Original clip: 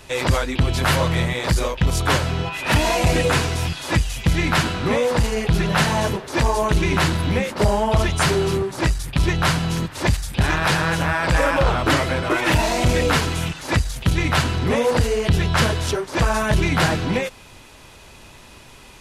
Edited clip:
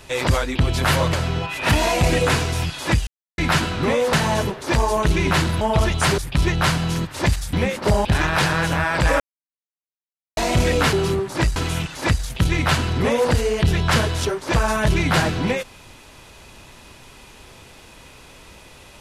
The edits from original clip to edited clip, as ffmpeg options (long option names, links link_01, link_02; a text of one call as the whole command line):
ffmpeg -i in.wav -filter_complex "[0:a]asplit=13[link_01][link_02][link_03][link_04][link_05][link_06][link_07][link_08][link_09][link_10][link_11][link_12][link_13];[link_01]atrim=end=1.132[link_14];[link_02]atrim=start=2.158:end=4.1,asetpts=PTS-STARTPTS,afade=type=out:start_time=1.938:duration=0.004:curve=hsin[link_15];[link_03]atrim=start=4.1:end=4.41,asetpts=PTS-STARTPTS,volume=0[link_16];[link_04]atrim=start=4.41:end=5.162,asetpts=PTS-STARTPTS,afade=type=in:duration=0.004:curve=hsin[link_17];[link_05]atrim=start=5.788:end=7.272[link_18];[link_06]atrim=start=7.788:end=8.362[link_19];[link_07]atrim=start=8.988:end=10.342[link_20];[link_08]atrim=start=7.268:end=7.792[link_21];[link_09]atrim=start=10.338:end=11.49,asetpts=PTS-STARTPTS,afade=type=out:start_time=1.148:duration=0.004:curve=hsin[link_22];[link_10]atrim=start=11.49:end=12.66,asetpts=PTS-STARTPTS,volume=0[link_23];[link_11]atrim=start=12.66:end=13.222,asetpts=PTS-STARTPTS,afade=type=in:duration=0.004:curve=hsin[link_24];[link_12]atrim=start=8.358:end=8.992[link_25];[link_13]atrim=start=13.218[link_26];[link_15][link_16][link_17]concat=n=3:v=0:a=1[link_27];[link_14][link_27]acrossfade=duration=0.004:curve1=hsin:curve2=hsin[link_28];[link_28][link_18]acrossfade=duration=0.004:curve1=hsin:curve2=hsin[link_29];[link_29][link_19]acrossfade=duration=0.004:curve1=hsin:curve2=hsin[link_30];[link_30][link_20]acrossfade=duration=0.004:curve1=hsin:curve2=hsin[link_31];[link_31][link_21]acrossfade=duration=0.004:curve1=hsin:curve2=hsin[link_32];[link_22][link_23][link_24]concat=n=3:v=0:a=1[link_33];[link_32][link_33]acrossfade=duration=0.004:curve1=hsin:curve2=hsin[link_34];[link_34][link_25]acrossfade=duration=0.004:curve1=hsin:curve2=hsin[link_35];[link_35][link_26]acrossfade=duration=0.004:curve1=hsin:curve2=hsin" out.wav